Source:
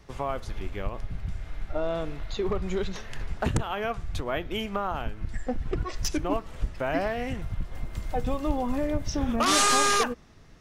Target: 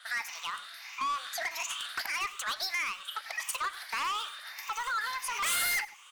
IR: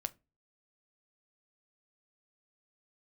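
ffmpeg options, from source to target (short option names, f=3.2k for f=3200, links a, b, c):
-filter_complex "[0:a]afftfilt=real='re*pow(10,12/40*sin(2*PI*(0.74*log(max(b,1)*sr/1024/100)/log(2)-(0.93)*(pts-256)/sr)))':imag='im*pow(10,12/40*sin(2*PI*(0.74*log(max(b,1)*sr/1024/100)/log(2)-(0.93)*(pts-256)/sr)))':win_size=1024:overlap=0.75,highpass=f=700:w=0.5412,highpass=f=700:w=1.3066,highshelf=f=3.2k:g=-5.5,asplit=2[a][b];[b]acompressor=threshold=-36dB:ratio=6,volume=3dB[c];[a][c]amix=inputs=2:normalize=0,asoftclip=type=tanh:threshold=-28dB,asplit=2[d][e];[e]adelay=160,highpass=300,lowpass=3.4k,asoftclip=type=hard:threshold=-37dB,volume=-12dB[f];[d][f]amix=inputs=2:normalize=0,asetrate=76440,aresample=44100,adynamicequalizer=threshold=0.00562:dfrequency=7700:dqfactor=0.7:tfrequency=7700:tqfactor=0.7:attack=5:release=100:ratio=0.375:range=1.5:mode=boostabove:tftype=highshelf"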